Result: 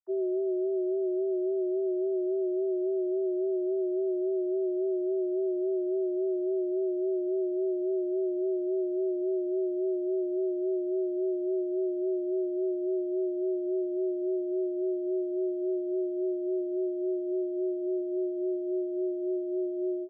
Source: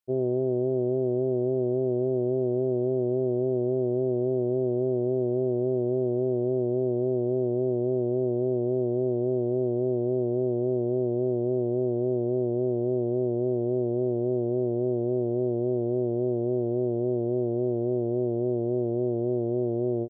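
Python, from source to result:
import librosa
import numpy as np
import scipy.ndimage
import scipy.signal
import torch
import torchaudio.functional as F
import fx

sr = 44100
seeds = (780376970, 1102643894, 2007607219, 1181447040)

y = fx.sine_speech(x, sr)
y = F.gain(torch.from_numpy(y), -3.5).numpy()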